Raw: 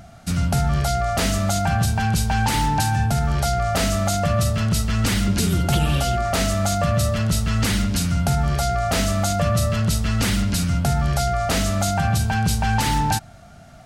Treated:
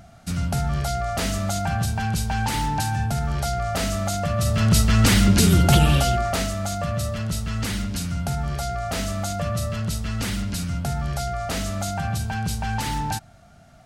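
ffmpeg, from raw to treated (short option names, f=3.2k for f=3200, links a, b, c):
-af "volume=4dB,afade=t=in:st=4.37:d=0.4:silence=0.398107,afade=t=out:st=5.72:d=0.8:silence=0.316228"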